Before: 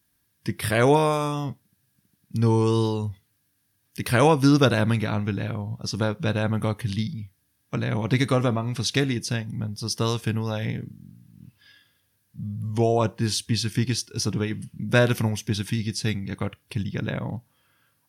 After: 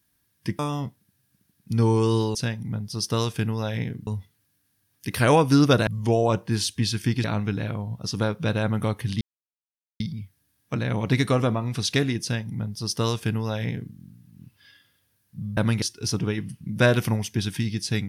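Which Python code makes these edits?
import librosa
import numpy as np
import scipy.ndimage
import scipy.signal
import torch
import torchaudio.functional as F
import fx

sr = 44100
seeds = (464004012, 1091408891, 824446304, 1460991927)

y = fx.edit(x, sr, fx.cut(start_s=0.59, length_s=0.64),
    fx.swap(start_s=4.79, length_s=0.25, other_s=12.58, other_length_s=1.37),
    fx.insert_silence(at_s=7.01, length_s=0.79),
    fx.duplicate(start_s=9.23, length_s=1.72, to_s=2.99), tone=tone)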